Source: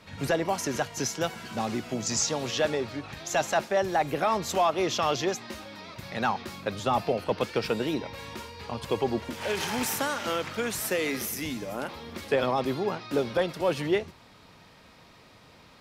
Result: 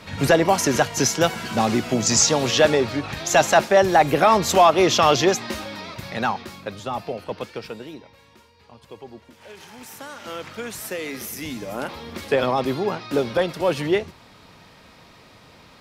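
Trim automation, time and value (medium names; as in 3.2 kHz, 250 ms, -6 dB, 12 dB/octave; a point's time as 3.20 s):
5.67 s +10 dB
6.88 s -2.5 dB
7.38 s -2.5 dB
8.27 s -13 dB
9.78 s -13 dB
10.45 s -2 dB
11.09 s -2 dB
11.83 s +5 dB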